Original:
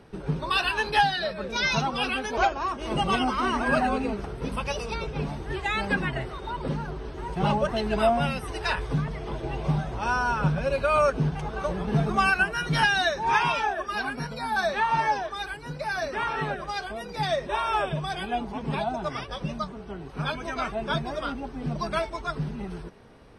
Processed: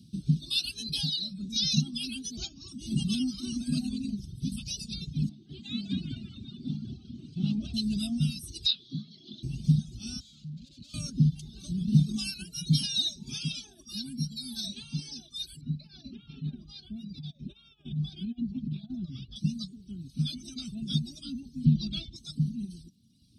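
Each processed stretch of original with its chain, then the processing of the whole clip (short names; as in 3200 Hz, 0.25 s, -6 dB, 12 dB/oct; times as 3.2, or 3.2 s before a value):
5.29–7.74 BPF 210–3100 Hz + frequency-shifting echo 0.199 s, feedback 49%, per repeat -140 Hz, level -3 dB
8.66–9.43 speaker cabinet 310–4800 Hz, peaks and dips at 890 Hz -5 dB, 2400 Hz -5 dB, 3900 Hz +10 dB + upward compressor, threshold -36 dBFS + doubler 24 ms -7.5 dB
10.2–10.94 tube stage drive 39 dB, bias 0.75 + air absorption 100 m
15.61–19.36 negative-ratio compressor -30 dBFS, ratio -0.5 + air absorption 360 m
21.65–22.16 synth low-pass 3300 Hz, resonance Q 2 + low shelf 250 Hz +9 dB
whole clip: HPF 110 Hz 12 dB/oct; reverb removal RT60 1.5 s; elliptic band-stop 230–3900 Hz, stop band 40 dB; gain +5.5 dB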